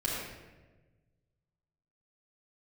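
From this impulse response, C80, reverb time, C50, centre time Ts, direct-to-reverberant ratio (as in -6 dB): 0.5 dB, 1.3 s, -1.5 dB, 88 ms, -6.5 dB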